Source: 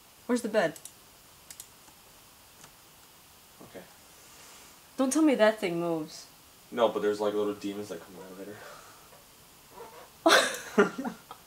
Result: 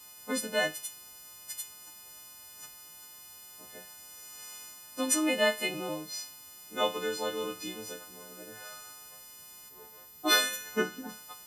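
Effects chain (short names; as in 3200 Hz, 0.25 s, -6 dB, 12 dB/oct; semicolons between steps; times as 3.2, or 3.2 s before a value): frequency quantiser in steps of 3 st; spectral gain 9.69–11.09, 480–11000 Hz -6 dB; dynamic EQ 2800 Hz, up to +6 dB, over -45 dBFS, Q 0.9; gain -5.5 dB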